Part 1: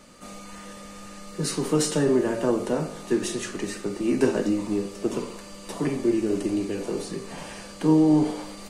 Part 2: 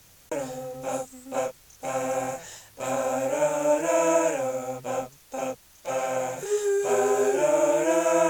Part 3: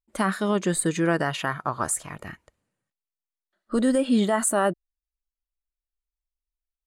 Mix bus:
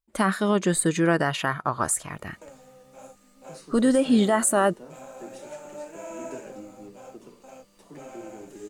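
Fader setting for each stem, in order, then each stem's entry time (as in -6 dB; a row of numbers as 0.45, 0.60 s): -19.5, -16.5, +1.5 dB; 2.10, 2.10, 0.00 s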